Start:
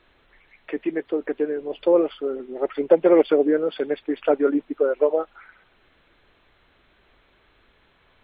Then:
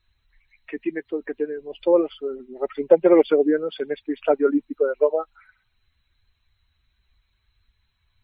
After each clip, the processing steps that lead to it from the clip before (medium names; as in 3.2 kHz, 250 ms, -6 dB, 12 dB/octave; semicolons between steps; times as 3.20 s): expander on every frequency bin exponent 1.5; trim +2.5 dB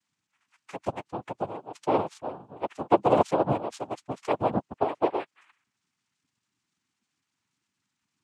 dynamic bell 1.4 kHz, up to -5 dB, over -44 dBFS, Q 2.8; noise-vocoded speech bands 4; trim -6.5 dB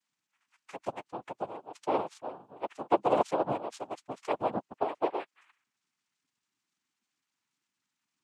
peaking EQ 67 Hz -12 dB 2.9 oct; trim -3.5 dB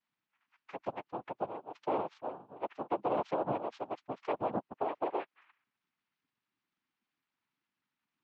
peak limiter -22.5 dBFS, peak gain reduction 10.5 dB; Gaussian low-pass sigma 2.2 samples